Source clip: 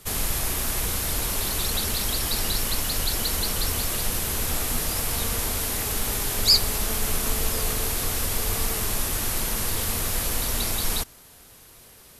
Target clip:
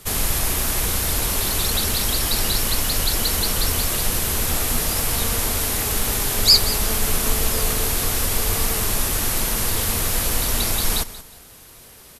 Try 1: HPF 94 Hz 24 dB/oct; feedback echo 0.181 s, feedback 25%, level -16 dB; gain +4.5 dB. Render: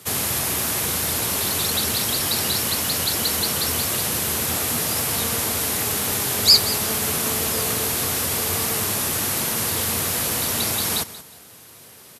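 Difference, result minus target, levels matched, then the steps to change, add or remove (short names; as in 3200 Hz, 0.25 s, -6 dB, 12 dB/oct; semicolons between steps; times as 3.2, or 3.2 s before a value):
125 Hz band -3.5 dB
remove: HPF 94 Hz 24 dB/oct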